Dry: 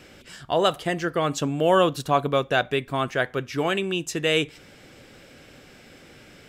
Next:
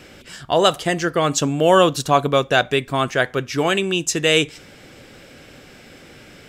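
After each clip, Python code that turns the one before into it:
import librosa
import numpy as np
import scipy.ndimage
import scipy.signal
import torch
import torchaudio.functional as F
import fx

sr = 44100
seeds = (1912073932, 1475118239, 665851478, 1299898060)

y = fx.dynamic_eq(x, sr, hz=6600.0, q=0.97, threshold_db=-46.0, ratio=4.0, max_db=7)
y = y * librosa.db_to_amplitude(5.0)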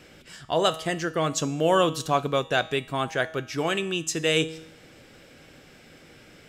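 y = fx.comb_fb(x, sr, f0_hz=160.0, decay_s=0.77, harmonics='all', damping=0.0, mix_pct=60)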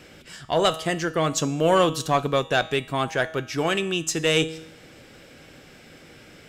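y = fx.diode_clip(x, sr, knee_db=-12.0)
y = y * librosa.db_to_amplitude(3.0)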